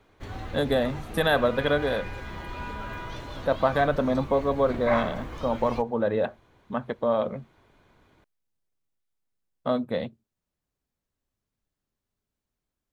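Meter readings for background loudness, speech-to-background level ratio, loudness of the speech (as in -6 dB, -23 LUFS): -37.0 LUFS, 10.5 dB, -26.5 LUFS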